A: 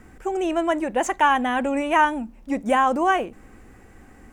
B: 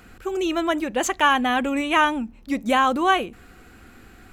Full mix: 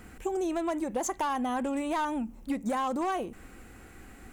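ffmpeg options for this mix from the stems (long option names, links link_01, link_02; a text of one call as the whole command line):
ffmpeg -i stem1.wav -i stem2.wav -filter_complex "[0:a]aexciter=amount=1.2:drive=5.5:freq=2200,volume=-4dB[link_01];[1:a]alimiter=limit=-14dB:level=0:latency=1,volume=-6.5dB[link_02];[link_01][link_02]amix=inputs=2:normalize=0,volume=17.5dB,asoftclip=hard,volume=-17.5dB,acompressor=threshold=-28dB:ratio=6" out.wav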